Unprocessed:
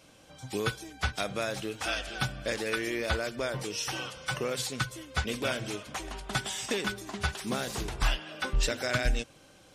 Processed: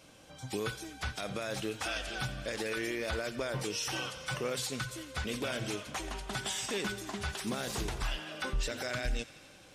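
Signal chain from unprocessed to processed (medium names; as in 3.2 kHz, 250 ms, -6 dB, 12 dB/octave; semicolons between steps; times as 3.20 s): peak limiter -25 dBFS, peak gain reduction 10 dB; feedback echo behind a high-pass 87 ms, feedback 79%, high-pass 1.5 kHz, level -17 dB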